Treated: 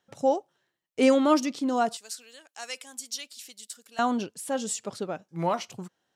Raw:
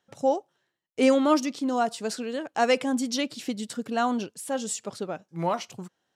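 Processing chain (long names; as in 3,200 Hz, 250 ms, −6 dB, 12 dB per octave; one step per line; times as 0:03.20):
0:01.97–0:03.99: first difference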